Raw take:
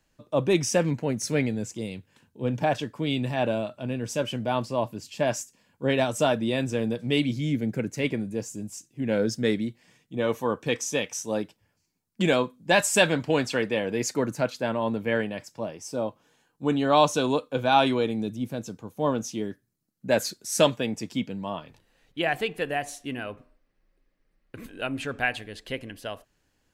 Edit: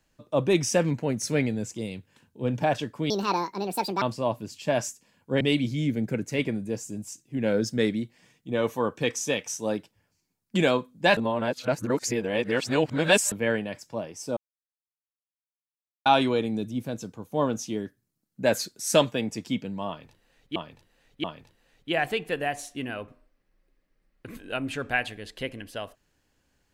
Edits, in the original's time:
3.1–4.54 speed 157%
5.93–7.06 cut
12.82–14.97 reverse
16.02–17.71 mute
21.53–22.21 loop, 3 plays

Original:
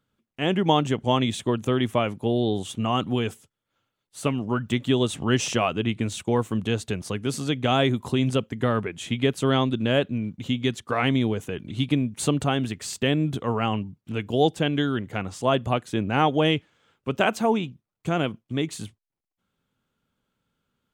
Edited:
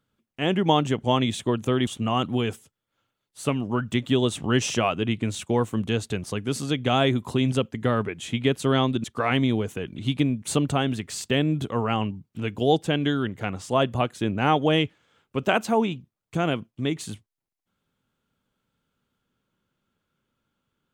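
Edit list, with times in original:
1.87–2.65 cut
9.82–10.76 cut

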